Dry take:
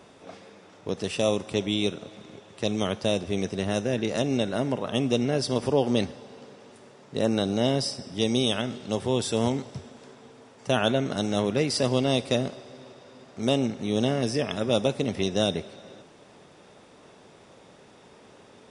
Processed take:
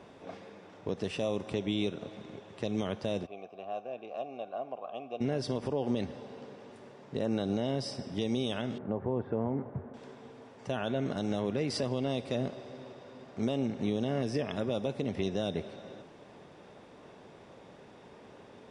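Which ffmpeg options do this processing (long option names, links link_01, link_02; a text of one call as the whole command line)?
ffmpeg -i in.wav -filter_complex "[0:a]asplit=3[link_01][link_02][link_03];[link_01]afade=type=out:start_time=3.25:duration=0.02[link_04];[link_02]asplit=3[link_05][link_06][link_07];[link_05]bandpass=frequency=730:width_type=q:width=8,volume=0dB[link_08];[link_06]bandpass=frequency=1090:width_type=q:width=8,volume=-6dB[link_09];[link_07]bandpass=frequency=2440:width_type=q:width=8,volume=-9dB[link_10];[link_08][link_09][link_10]amix=inputs=3:normalize=0,afade=type=in:start_time=3.25:duration=0.02,afade=type=out:start_time=5.2:duration=0.02[link_11];[link_03]afade=type=in:start_time=5.2:duration=0.02[link_12];[link_04][link_11][link_12]amix=inputs=3:normalize=0,asettb=1/sr,asplit=3[link_13][link_14][link_15];[link_13]atrim=end=8.784[link_16];[link_14]atrim=start=8.78:end=9.94,asetpts=PTS-STARTPTS,afade=type=in:duration=0.004:curve=qsin,afade=type=out:start_time=1.156:duration=0.004:curve=qsin,lowpass=frequency=1600:width=0.5412,lowpass=frequency=1600:width=1.3066[link_17];[link_15]atrim=start=9.936[link_18];[link_16][link_17]acrossfade=duration=0.004:curve1=hsin:curve2=qsin[link_19];[link_19][link_18]acrossfade=duration=0.004:curve1=qsin:curve2=hsin,lowpass=frequency=2400:poles=1,bandreject=frequency=1300:width=18,alimiter=limit=-21dB:level=0:latency=1:release=176" out.wav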